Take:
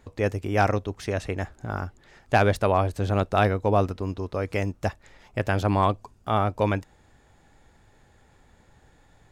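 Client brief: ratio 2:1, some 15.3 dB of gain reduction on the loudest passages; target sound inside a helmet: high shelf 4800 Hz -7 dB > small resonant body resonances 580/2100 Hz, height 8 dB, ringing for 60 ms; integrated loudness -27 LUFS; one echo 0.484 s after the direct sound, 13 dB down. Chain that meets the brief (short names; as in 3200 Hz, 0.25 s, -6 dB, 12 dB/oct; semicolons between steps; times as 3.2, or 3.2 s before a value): compressor 2:1, threshold -45 dBFS; high shelf 4800 Hz -7 dB; echo 0.484 s -13 dB; small resonant body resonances 580/2100 Hz, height 8 dB, ringing for 60 ms; gain +11 dB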